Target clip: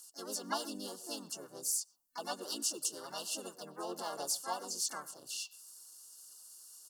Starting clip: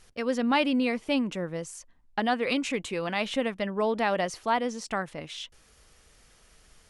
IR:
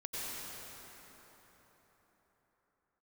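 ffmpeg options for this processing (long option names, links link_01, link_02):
-filter_complex "[0:a]acrossover=split=140[link_01][link_02];[link_02]crystalizer=i=1:c=0[link_03];[link_01][link_03]amix=inputs=2:normalize=0,aphaser=in_gain=1:out_gain=1:delay=4.6:decay=0.31:speed=1.9:type=sinusoidal,aderivative,asplit=2[link_04][link_05];[1:a]atrim=start_sample=2205,atrim=end_sample=6174,lowpass=3200[link_06];[link_05][link_06]afir=irnorm=-1:irlink=0,volume=-10dB[link_07];[link_04][link_07]amix=inputs=2:normalize=0,afftfilt=real='re*(1-between(b*sr/4096,1500,3400))':imag='im*(1-between(b*sr/4096,1500,3400))':win_size=4096:overlap=0.75,asplit=4[link_08][link_09][link_10][link_11];[link_09]asetrate=35002,aresample=44100,atempo=1.25992,volume=-1dB[link_12];[link_10]asetrate=52444,aresample=44100,atempo=0.840896,volume=-4dB[link_13];[link_11]asetrate=66075,aresample=44100,atempo=0.66742,volume=-15dB[link_14];[link_08][link_12][link_13][link_14]amix=inputs=4:normalize=0,superequalizer=6b=1.78:13b=0.398"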